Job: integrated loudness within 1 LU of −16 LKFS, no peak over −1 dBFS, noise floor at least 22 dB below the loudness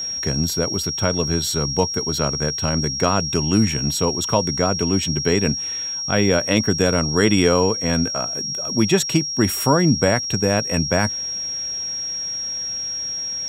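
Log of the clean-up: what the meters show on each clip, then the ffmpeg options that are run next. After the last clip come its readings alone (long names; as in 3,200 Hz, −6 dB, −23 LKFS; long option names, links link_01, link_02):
interfering tone 5,600 Hz; level of the tone −24 dBFS; integrated loudness −19.5 LKFS; sample peak −3.0 dBFS; target loudness −16.0 LKFS
→ -af "bandreject=frequency=5600:width=30"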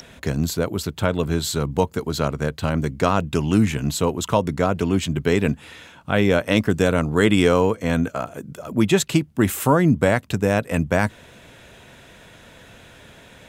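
interfering tone none found; integrated loudness −21.0 LKFS; sample peak −4.0 dBFS; target loudness −16.0 LKFS
→ -af "volume=5dB,alimiter=limit=-1dB:level=0:latency=1"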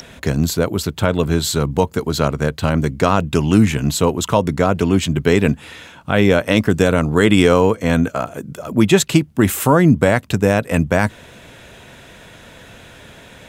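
integrated loudness −16.5 LKFS; sample peak −1.0 dBFS; background noise floor −42 dBFS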